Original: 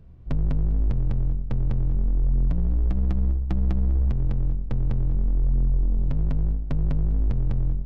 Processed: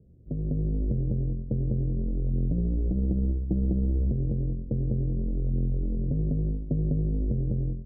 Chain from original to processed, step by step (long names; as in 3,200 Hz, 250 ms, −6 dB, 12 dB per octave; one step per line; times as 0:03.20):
Butterworth low-pass 530 Hz 36 dB per octave
automatic gain control gain up to 6 dB
high-pass filter 190 Hz 6 dB per octave